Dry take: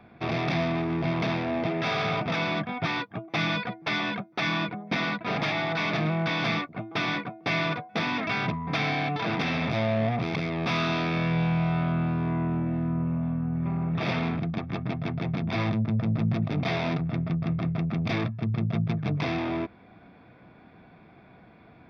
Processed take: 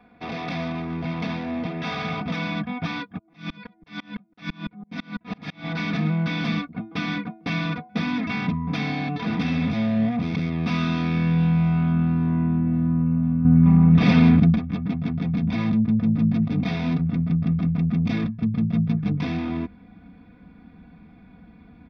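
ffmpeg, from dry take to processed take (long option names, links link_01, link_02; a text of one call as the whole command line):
ffmpeg -i in.wav -filter_complex "[0:a]asplit=3[link_01][link_02][link_03];[link_01]afade=type=out:start_time=3.17:duration=0.02[link_04];[link_02]aeval=exprs='val(0)*pow(10,-33*if(lt(mod(-6*n/s,1),2*abs(-6)/1000),1-mod(-6*n/s,1)/(2*abs(-6)/1000),(mod(-6*n/s,1)-2*abs(-6)/1000)/(1-2*abs(-6)/1000))/20)':channel_layout=same,afade=type=in:start_time=3.17:duration=0.02,afade=type=out:start_time=5.64:duration=0.02[link_05];[link_03]afade=type=in:start_time=5.64:duration=0.02[link_06];[link_04][link_05][link_06]amix=inputs=3:normalize=0,asplit=3[link_07][link_08][link_09];[link_07]atrim=end=13.452[link_10];[link_08]atrim=start=13.448:end=14.562,asetpts=PTS-STARTPTS,volume=8dB[link_11];[link_09]atrim=start=14.558[link_12];[link_10][link_11]acrossfade=duration=0.004:curve1=hsin:curve2=hsin[link_13];[link_13][link_12]acrossfade=duration=0.004:curve1=hsin:curve2=hsin,aecho=1:1:4.1:0.83,asubboost=boost=5:cutoff=240,volume=-4.5dB" out.wav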